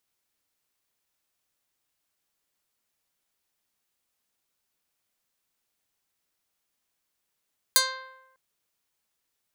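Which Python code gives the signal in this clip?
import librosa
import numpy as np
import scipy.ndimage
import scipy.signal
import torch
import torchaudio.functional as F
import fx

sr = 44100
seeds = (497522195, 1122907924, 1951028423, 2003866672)

y = fx.pluck(sr, length_s=0.6, note=72, decay_s=0.98, pick=0.19, brightness='medium')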